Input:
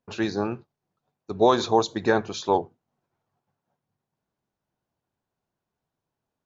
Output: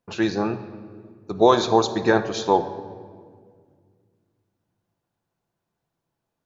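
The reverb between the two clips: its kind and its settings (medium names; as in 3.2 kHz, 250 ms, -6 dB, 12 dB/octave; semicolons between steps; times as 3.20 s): simulated room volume 2900 m³, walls mixed, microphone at 0.77 m; trim +2.5 dB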